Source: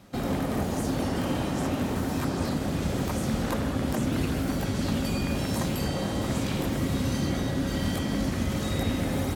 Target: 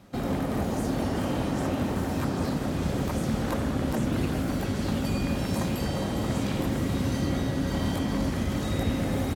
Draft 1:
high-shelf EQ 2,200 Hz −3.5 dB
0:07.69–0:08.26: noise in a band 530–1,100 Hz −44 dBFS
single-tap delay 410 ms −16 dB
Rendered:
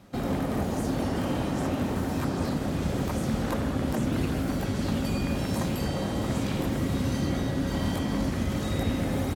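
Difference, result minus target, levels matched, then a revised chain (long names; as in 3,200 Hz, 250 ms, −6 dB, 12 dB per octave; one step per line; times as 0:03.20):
echo-to-direct −7 dB
high-shelf EQ 2,200 Hz −3.5 dB
0:07.69–0:08.26: noise in a band 530–1,100 Hz −44 dBFS
single-tap delay 410 ms −9 dB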